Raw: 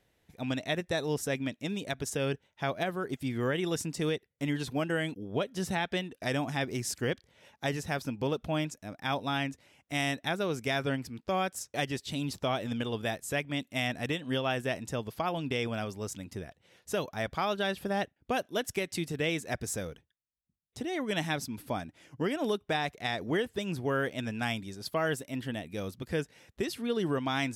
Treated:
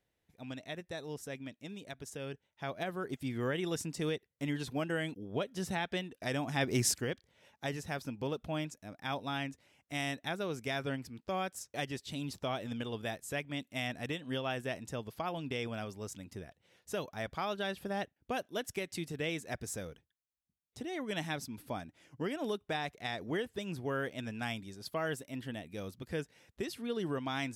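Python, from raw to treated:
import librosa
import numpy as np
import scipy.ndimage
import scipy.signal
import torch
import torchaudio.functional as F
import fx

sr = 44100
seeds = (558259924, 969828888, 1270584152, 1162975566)

y = fx.gain(x, sr, db=fx.line((2.34, -11.0), (3.0, -4.0), (6.43, -4.0), (6.87, 6.0), (7.06, -5.5)))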